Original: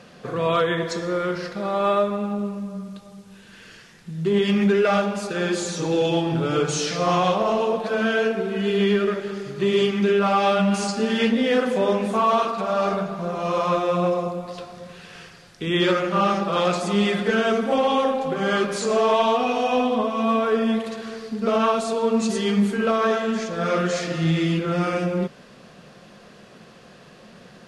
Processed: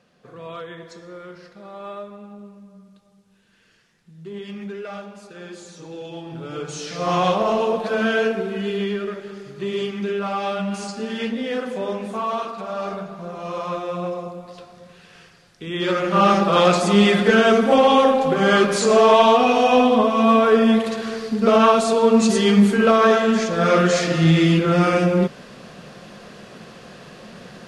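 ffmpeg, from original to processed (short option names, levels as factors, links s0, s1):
-af "volume=4.47,afade=t=in:st=6.1:d=0.78:silence=0.421697,afade=t=in:st=6.88:d=0.36:silence=0.398107,afade=t=out:st=8.25:d=0.66:silence=0.446684,afade=t=in:st=15.78:d=0.55:silence=0.266073"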